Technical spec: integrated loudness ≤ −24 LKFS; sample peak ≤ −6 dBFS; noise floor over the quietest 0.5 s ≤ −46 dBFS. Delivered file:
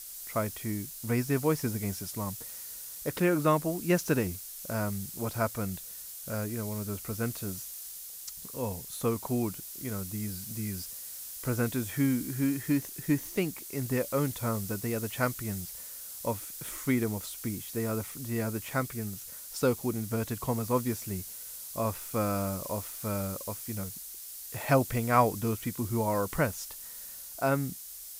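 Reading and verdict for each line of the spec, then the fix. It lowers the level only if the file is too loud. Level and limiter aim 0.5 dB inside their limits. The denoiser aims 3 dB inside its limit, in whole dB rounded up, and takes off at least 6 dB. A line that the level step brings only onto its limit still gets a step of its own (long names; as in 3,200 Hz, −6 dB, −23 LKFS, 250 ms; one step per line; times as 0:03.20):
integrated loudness −32.0 LKFS: in spec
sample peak −10.0 dBFS: in spec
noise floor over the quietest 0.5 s −44 dBFS: out of spec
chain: broadband denoise 6 dB, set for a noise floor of −44 dBFS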